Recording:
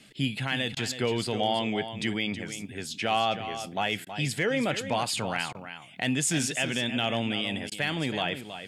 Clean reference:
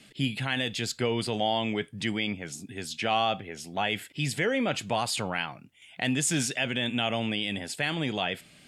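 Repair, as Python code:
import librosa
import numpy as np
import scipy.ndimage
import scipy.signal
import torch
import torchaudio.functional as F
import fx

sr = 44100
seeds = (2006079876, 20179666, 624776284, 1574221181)

y = fx.fix_declip(x, sr, threshold_db=-16.0)
y = fx.fix_interpolate(y, sr, at_s=(0.75, 4.05, 5.53, 7.7), length_ms=15.0)
y = fx.fix_echo_inverse(y, sr, delay_ms=322, level_db=-10.5)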